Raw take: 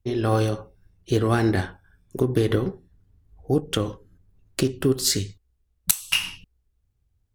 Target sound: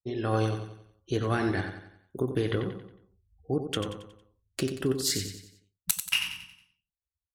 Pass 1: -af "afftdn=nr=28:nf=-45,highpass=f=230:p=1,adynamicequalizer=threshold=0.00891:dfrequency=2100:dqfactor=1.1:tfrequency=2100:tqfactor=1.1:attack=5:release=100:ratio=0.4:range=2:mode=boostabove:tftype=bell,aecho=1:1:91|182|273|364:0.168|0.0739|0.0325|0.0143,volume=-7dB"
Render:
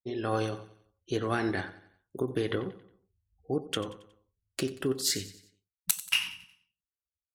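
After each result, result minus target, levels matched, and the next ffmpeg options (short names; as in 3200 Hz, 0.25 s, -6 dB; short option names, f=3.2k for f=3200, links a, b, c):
echo-to-direct -7.5 dB; 125 Hz band -5.0 dB
-af "afftdn=nr=28:nf=-45,highpass=f=230:p=1,adynamicequalizer=threshold=0.00891:dfrequency=2100:dqfactor=1.1:tfrequency=2100:tqfactor=1.1:attack=5:release=100:ratio=0.4:range=2:mode=boostabove:tftype=bell,aecho=1:1:91|182|273|364|455:0.398|0.175|0.0771|0.0339|0.0149,volume=-7dB"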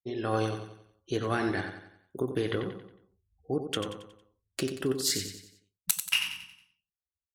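125 Hz band -4.0 dB
-af "afftdn=nr=28:nf=-45,highpass=f=75:p=1,adynamicequalizer=threshold=0.00891:dfrequency=2100:dqfactor=1.1:tfrequency=2100:tqfactor=1.1:attack=5:release=100:ratio=0.4:range=2:mode=boostabove:tftype=bell,aecho=1:1:91|182|273|364|455:0.398|0.175|0.0771|0.0339|0.0149,volume=-7dB"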